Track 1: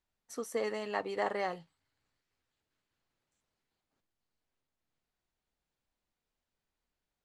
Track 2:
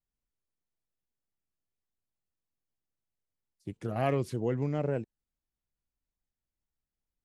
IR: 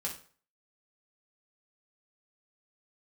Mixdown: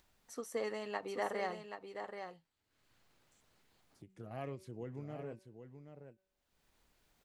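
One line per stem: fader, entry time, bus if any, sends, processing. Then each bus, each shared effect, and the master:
-4.0 dB, 0.00 s, no send, echo send -7.5 dB, none
-14.5 dB, 0.35 s, no send, echo send -9 dB, de-hum 189.6 Hz, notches 16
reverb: none
echo: delay 779 ms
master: upward compressor, threshold -57 dBFS; endings held to a fixed fall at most 280 dB/s

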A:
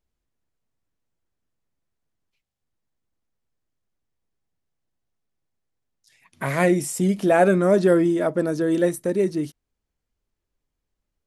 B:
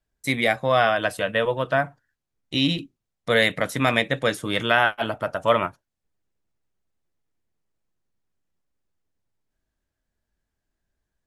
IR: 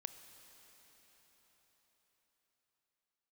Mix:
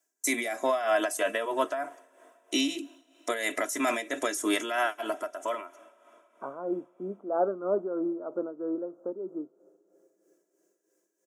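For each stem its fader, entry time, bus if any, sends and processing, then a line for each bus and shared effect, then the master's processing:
-9.5 dB, 0.00 s, send -11 dB, steep low-pass 1.4 kHz 96 dB/octave
+0.5 dB, 0.00 s, send -12 dB, resonant high shelf 5.1 kHz +8 dB, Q 3; comb 3 ms, depth 80%; peak limiter -16.5 dBFS, peak gain reduction 11.5 dB; auto duck -21 dB, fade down 1.55 s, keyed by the first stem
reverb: on, RT60 5.2 s, pre-delay 23 ms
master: high-pass 280 Hz 24 dB/octave; tremolo 3.1 Hz, depth 64%

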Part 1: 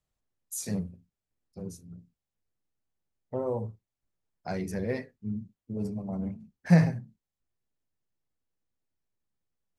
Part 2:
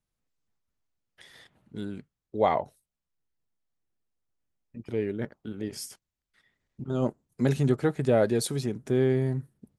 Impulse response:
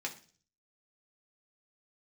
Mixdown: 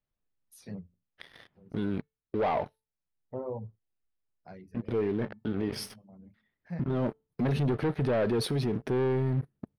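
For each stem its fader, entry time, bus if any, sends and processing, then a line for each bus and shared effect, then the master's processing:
-4.5 dB, 0.00 s, no send, reverb removal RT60 0.55 s; auto duck -14 dB, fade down 0.65 s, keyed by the second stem
+3.0 dB, 0.00 s, no send, feedback comb 440 Hz, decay 0.33 s, harmonics all, mix 40%; waveshaping leveller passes 3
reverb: none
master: boxcar filter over 6 samples; peak limiter -22.5 dBFS, peak gain reduction 10.5 dB

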